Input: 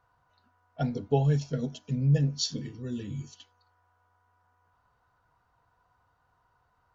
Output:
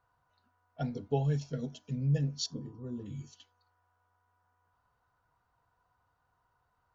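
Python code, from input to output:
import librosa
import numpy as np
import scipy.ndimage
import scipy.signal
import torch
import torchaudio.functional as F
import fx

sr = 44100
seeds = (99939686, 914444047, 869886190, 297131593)

y = fx.high_shelf_res(x, sr, hz=1500.0, db=-13.0, q=3.0, at=(2.46, 3.06))
y = y * 10.0 ** (-5.5 / 20.0)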